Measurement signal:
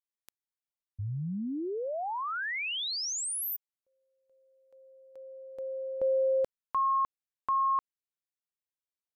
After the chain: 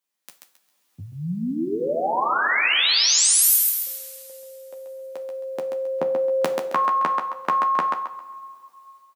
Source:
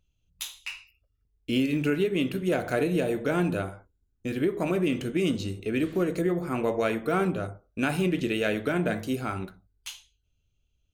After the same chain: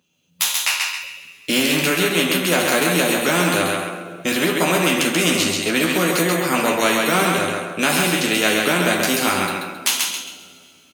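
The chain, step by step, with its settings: high-pass 170 Hz 24 dB/octave; doubling 12 ms -5 dB; level rider gain up to 14 dB; thinning echo 134 ms, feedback 28%, high-pass 310 Hz, level -4.5 dB; two-slope reverb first 0.36 s, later 2.3 s, from -21 dB, DRR 6.5 dB; spectrum-flattening compressor 2:1; trim -1.5 dB

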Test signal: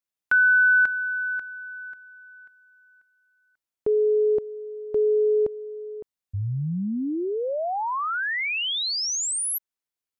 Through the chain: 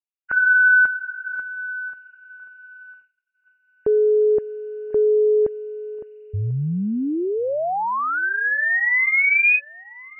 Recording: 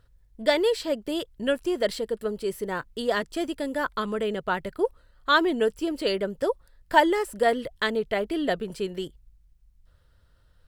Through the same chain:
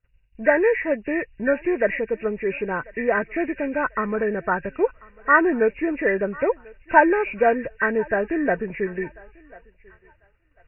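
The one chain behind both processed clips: knee-point frequency compression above 1.5 kHz 4:1; thinning echo 1042 ms, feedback 37%, high-pass 490 Hz, level -22 dB; expander -50 dBFS; trim +4 dB

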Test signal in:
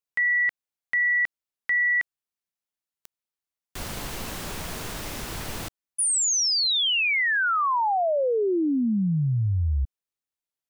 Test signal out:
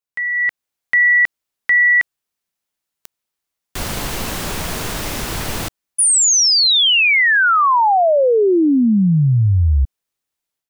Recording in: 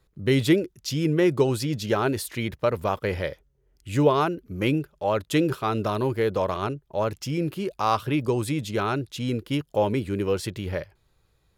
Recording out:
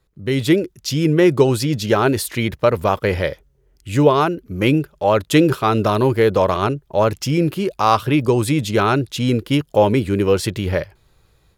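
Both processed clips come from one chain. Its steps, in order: level rider gain up to 10 dB

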